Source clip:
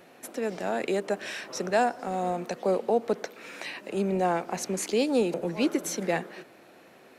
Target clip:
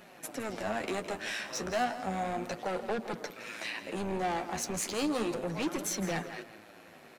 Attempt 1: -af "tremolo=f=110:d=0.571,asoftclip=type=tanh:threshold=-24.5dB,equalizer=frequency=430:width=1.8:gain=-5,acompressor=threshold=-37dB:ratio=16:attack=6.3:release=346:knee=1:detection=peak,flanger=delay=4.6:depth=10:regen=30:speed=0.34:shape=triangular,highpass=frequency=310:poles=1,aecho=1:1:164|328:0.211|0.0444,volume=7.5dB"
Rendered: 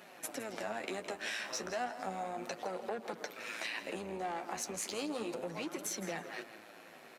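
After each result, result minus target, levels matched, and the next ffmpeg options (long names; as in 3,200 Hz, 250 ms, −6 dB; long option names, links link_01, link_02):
downward compressor: peak gain reduction +10.5 dB; soft clipping: distortion −5 dB; 250 Hz band −3.0 dB
-af "tremolo=f=110:d=0.571,asoftclip=type=tanh:threshold=-24.5dB,equalizer=frequency=430:width=1.8:gain=-5,flanger=delay=4.6:depth=10:regen=30:speed=0.34:shape=triangular,highpass=frequency=310:poles=1,aecho=1:1:164|328:0.211|0.0444,volume=7.5dB"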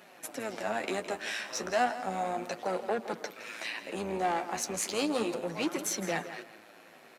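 soft clipping: distortion −5 dB; 250 Hz band −2.0 dB
-af "tremolo=f=110:d=0.571,asoftclip=type=tanh:threshold=-30.5dB,equalizer=frequency=430:width=1.8:gain=-5,flanger=delay=4.6:depth=10:regen=30:speed=0.34:shape=triangular,highpass=frequency=310:poles=1,aecho=1:1:164|328:0.211|0.0444,volume=7.5dB"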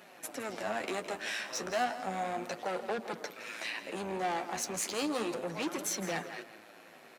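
250 Hz band −2.5 dB
-af "tremolo=f=110:d=0.571,asoftclip=type=tanh:threshold=-30.5dB,equalizer=frequency=430:width=1.8:gain=-5,flanger=delay=4.6:depth=10:regen=30:speed=0.34:shape=triangular,aecho=1:1:164|328:0.211|0.0444,volume=7.5dB"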